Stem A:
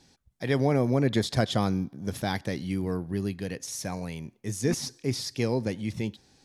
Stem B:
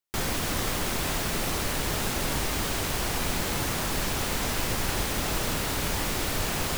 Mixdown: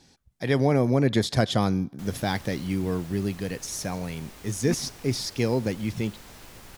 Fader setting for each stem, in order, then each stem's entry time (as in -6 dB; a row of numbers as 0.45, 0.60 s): +2.5, -18.5 dB; 0.00, 1.85 s